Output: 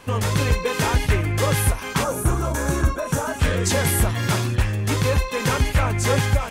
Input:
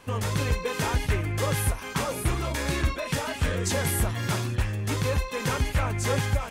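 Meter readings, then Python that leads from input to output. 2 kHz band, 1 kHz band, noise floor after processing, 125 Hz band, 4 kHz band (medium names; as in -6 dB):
+5.5 dB, +6.0 dB, -32 dBFS, +6.0 dB, +5.0 dB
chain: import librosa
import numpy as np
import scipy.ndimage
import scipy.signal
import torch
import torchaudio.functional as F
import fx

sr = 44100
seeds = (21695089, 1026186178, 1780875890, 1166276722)

y = fx.spec_box(x, sr, start_s=2.04, length_s=1.36, low_hz=1700.0, high_hz=5500.0, gain_db=-11)
y = y * librosa.db_to_amplitude(6.0)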